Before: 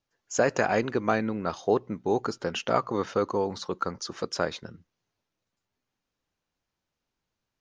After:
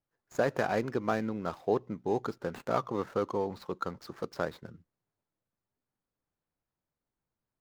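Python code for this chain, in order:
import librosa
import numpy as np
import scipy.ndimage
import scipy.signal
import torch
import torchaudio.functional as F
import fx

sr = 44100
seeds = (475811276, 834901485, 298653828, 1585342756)

y = scipy.ndimage.median_filter(x, 15, mode='constant')
y = fx.peak_eq(y, sr, hz=140.0, db=3.5, octaves=0.33)
y = y * librosa.db_to_amplitude(-4.5)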